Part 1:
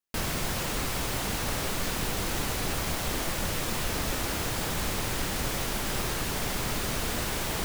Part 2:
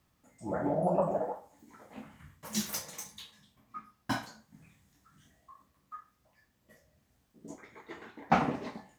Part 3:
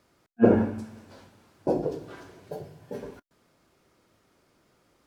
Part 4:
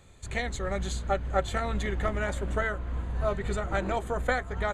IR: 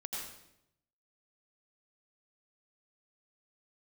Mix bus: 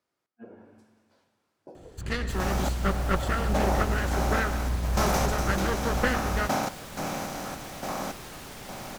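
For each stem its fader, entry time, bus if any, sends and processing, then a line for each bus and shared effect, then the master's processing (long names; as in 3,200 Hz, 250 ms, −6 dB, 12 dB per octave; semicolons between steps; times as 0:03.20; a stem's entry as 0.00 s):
−11.0 dB, 2.15 s, no send, no processing
−2.0 dB, 2.40 s, no send, compressor on every frequency bin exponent 0.2; sample-and-hold tremolo, depth 90%
−16.5 dB, 0.00 s, send −9.5 dB, low-shelf EQ 270 Hz −7.5 dB; downward compressor 12 to 1, threshold −28 dBFS, peak gain reduction 14 dB
+1.0 dB, 1.75 s, send −9.5 dB, lower of the sound and its delayed copy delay 0.66 ms; tilt shelving filter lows +3 dB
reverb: on, RT60 0.80 s, pre-delay 78 ms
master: low-shelf EQ 61 Hz −6 dB; highs frequency-modulated by the lows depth 0.26 ms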